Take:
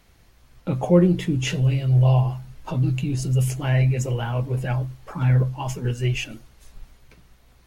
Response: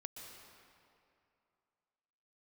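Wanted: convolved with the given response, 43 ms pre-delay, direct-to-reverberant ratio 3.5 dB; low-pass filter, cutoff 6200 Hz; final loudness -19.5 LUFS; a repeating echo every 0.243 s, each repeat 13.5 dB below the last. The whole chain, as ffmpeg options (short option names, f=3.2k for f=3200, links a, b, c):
-filter_complex "[0:a]lowpass=6.2k,aecho=1:1:243|486:0.211|0.0444,asplit=2[a][b];[1:a]atrim=start_sample=2205,adelay=43[c];[b][c]afir=irnorm=-1:irlink=0,volume=0dB[d];[a][d]amix=inputs=2:normalize=0,volume=3.5dB"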